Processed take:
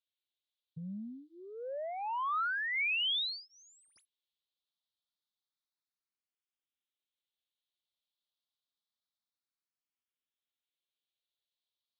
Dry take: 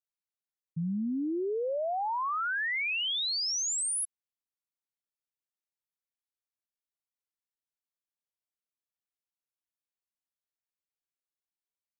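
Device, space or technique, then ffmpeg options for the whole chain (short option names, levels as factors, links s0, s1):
barber-pole phaser into a guitar amplifier: -filter_complex "[0:a]asettb=1/sr,asplit=3[s0][s1][s2];[s0]atrim=end=2.954[s3];[s1]atrim=start=2.95:end=3.96,asetpts=PTS-STARTPTS,afade=t=in:d=0.004:c=qsin,afade=t=out:st=1.006:d=0.004:c=qsin,aemphasis=mode=reproduction:type=50fm[s4];[s2]atrim=start=3.956[s5];[s3][s4]acrossfade=d=0.004:c1=hsin:c2=qsin[s6];[s6][s5]acrossfade=d=0.004:c1=qsin:c2=hsin,highshelf=f=2800:t=q:w=3:g=9.5,asplit=2[s7][s8];[s8]afreqshift=0.28[s9];[s7][s9]amix=inputs=2:normalize=1,asoftclip=type=tanh:threshold=0.0376,highpass=96,equalizer=f=160:t=q:w=4:g=-6,equalizer=f=420:t=q:w=4:g=-5,equalizer=f=740:t=q:w=4:g=-5,equalizer=f=1300:t=q:w=4:g=3,equalizer=f=2200:t=q:w=4:g=7,lowpass=f=3700:w=0.5412,lowpass=f=3700:w=1.3066"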